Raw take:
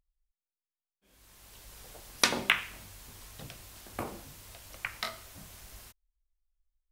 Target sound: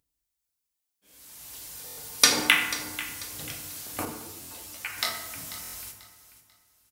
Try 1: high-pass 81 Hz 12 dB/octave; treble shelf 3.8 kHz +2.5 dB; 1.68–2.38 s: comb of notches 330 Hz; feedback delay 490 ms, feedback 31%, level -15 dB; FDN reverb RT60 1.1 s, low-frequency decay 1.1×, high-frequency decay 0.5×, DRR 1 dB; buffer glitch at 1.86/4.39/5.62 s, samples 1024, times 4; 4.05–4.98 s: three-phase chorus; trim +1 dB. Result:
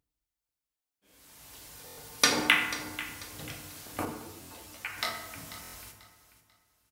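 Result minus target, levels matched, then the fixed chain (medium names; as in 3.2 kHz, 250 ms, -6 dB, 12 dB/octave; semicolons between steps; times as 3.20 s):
8 kHz band -4.0 dB
high-pass 81 Hz 12 dB/octave; treble shelf 3.8 kHz +12 dB; 1.68–2.38 s: comb of notches 330 Hz; feedback delay 490 ms, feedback 31%, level -15 dB; FDN reverb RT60 1.1 s, low-frequency decay 1.1×, high-frequency decay 0.5×, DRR 1 dB; buffer glitch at 1.86/4.39/5.62 s, samples 1024, times 4; 4.05–4.98 s: three-phase chorus; trim +1 dB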